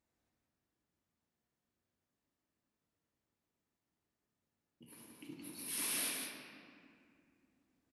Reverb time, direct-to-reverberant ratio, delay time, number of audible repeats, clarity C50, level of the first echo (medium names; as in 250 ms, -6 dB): 2.3 s, -2.5 dB, 172 ms, 1, -0.5 dB, -5.0 dB